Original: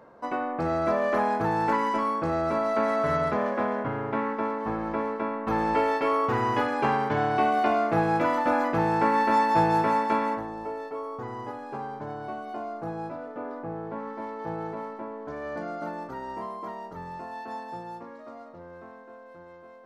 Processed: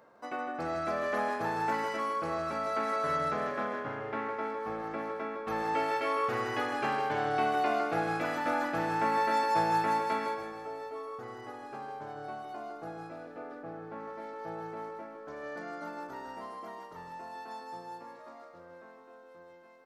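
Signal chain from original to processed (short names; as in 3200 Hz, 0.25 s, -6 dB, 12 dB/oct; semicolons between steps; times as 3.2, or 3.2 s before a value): tilt +2 dB/oct; notch 990 Hz, Q 17; on a send: feedback echo 0.157 s, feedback 45%, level -6.5 dB; on the sum: gain -6 dB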